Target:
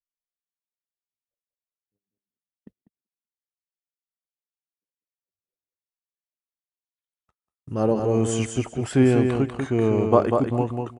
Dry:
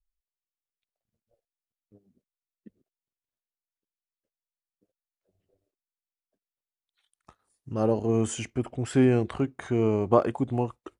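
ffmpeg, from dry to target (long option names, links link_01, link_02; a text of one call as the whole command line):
ffmpeg -i in.wav -af "aecho=1:1:194|388|582:0.562|0.112|0.0225,agate=range=-33dB:threshold=-49dB:ratio=16:detection=peak,volume=3dB" out.wav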